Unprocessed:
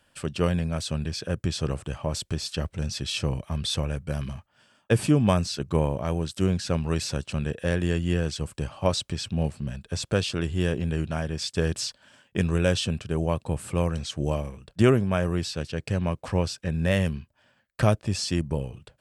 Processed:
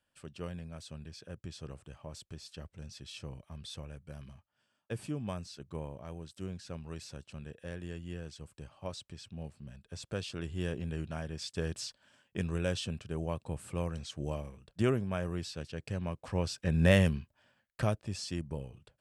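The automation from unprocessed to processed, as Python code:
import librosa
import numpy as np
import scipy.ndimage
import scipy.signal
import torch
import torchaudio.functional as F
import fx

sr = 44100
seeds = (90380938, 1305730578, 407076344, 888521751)

y = fx.gain(x, sr, db=fx.line((9.5, -17.0), (10.65, -10.0), (16.25, -10.0), (16.85, 0.5), (18.01, -11.0)))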